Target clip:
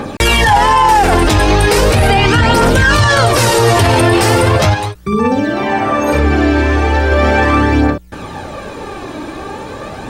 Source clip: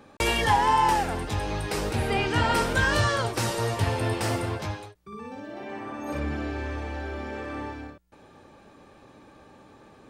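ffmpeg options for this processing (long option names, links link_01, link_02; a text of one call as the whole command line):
ffmpeg -i in.wav -filter_complex "[0:a]asplit=3[link_01][link_02][link_03];[link_01]afade=type=out:start_time=4.73:duration=0.02[link_04];[link_02]acompressor=threshold=-39dB:ratio=2,afade=type=in:start_time=4.73:duration=0.02,afade=type=out:start_time=7.11:duration=0.02[link_05];[link_03]afade=type=in:start_time=7.11:duration=0.02[link_06];[link_04][link_05][link_06]amix=inputs=3:normalize=0,aphaser=in_gain=1:out_gain=1:delay=3.2:decay=0.44:speed=0.38:type=triangular,alimiter=level_in=26.5dB:limit=-1dB:release=50:level=0:latency=1,volume=-1dB" out.wav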